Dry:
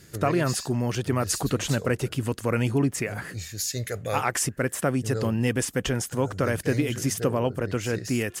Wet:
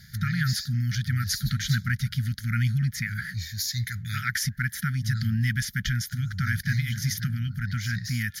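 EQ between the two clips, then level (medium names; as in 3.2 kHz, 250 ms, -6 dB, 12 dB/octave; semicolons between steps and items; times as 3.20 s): brick-wall FIR band-stop 240–1200 Hz; static phaser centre 1.8 kHz, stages 8; +4.5 dB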